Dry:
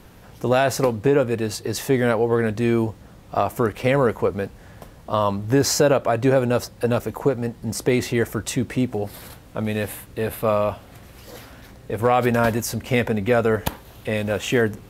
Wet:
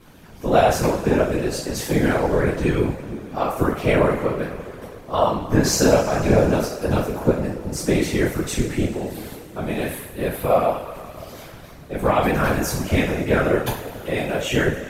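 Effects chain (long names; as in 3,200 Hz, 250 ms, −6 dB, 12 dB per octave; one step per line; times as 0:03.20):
coupled-rooms reverb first 0.43 s, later 3 s, from −17 dB, DRR −8.5 dB
random phases in short frames
level −8 dB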